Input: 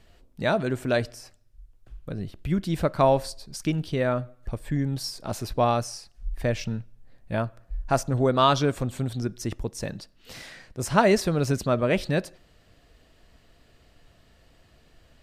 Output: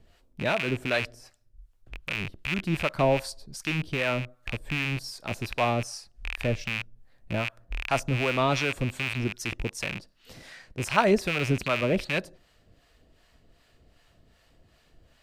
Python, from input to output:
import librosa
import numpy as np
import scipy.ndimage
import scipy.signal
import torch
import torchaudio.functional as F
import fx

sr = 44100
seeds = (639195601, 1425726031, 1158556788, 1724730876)

y = fx.rattle_buzz(x, sr, strikes_db=-37.0, level_db=-16.0)
y = fx.harmonic_tremolo(y, sr, hz=2.6, depth_pct=70, crossover_hz=660.0)